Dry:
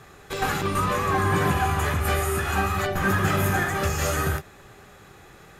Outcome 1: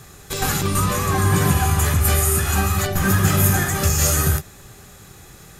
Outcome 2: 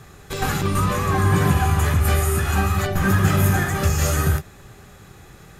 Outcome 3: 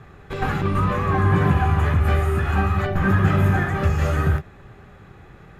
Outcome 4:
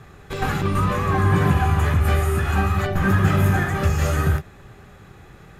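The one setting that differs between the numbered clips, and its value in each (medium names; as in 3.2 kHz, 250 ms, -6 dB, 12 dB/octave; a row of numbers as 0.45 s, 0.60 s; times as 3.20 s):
tone controls, treble: +14 dB, +5 dB, -15 dB, -5 dB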